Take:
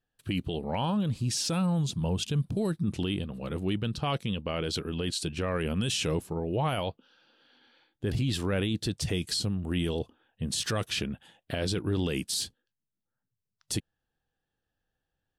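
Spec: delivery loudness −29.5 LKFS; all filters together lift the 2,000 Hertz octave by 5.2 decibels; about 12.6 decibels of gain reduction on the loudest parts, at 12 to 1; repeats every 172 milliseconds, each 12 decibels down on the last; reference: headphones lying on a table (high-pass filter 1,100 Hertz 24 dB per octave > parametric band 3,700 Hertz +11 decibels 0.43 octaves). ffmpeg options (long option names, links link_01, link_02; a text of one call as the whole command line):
ffmpeg -i in.wav -af "equalizer=frequency=2000:width_type=o:gain=5.5,acompressor=threshold=-37dB:ratio=12,highpass=frequency=1100:width=0.5412,highpass=frequency=1100:width=1.3066,equalizer=frequency=3700:width_type=o:width=0.43:gain=11,aecho=1:1:172|344|516:0.251|0.0628|0.0157,volume=10.5dB" out.wav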